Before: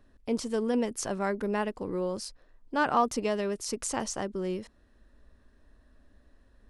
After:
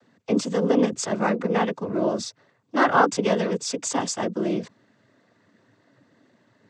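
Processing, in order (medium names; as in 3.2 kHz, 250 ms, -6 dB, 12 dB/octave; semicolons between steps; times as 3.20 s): noise-vocoded speech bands 16; trim +7.5 dB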